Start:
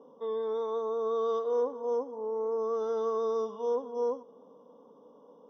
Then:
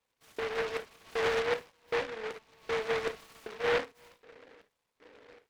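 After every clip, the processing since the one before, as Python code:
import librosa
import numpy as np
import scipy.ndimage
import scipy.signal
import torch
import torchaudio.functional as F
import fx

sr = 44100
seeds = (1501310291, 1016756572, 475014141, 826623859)

y = fx.filter_lfo_highpass(x, sr, shape='square', hz=1.3, low_hz=350.0, high_hz=2500.0, q=2.5)
y = fx.rev_gated(y, sr, seeds[0], gate_ms=90, shape='flat', drr_db=6.5)
y = fx.noise_mod_delay(y, sr, seeds[1], noise_hz=1300.0, depth_ms=0.21)
y = y * librosa.db_to_amplitude(-6.0)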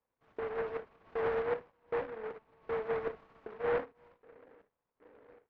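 y = scipy.signal.sosfilt(scipy.signal.butter(2, 1300.0, 'lowpass', fs=sr, output='sos'), x)
y = y * librosa.db_to_amplitude(-2.0)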